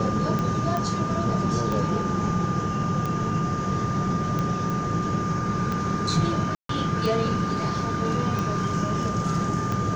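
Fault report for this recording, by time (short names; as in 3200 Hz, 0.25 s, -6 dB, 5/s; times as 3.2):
tick 45 rpm -15 dBFS
tone 1200 Hz -29 dBFS
0.77 pop -15 dBFS
4.7 pop
6.55–6.69 gap 0.143 s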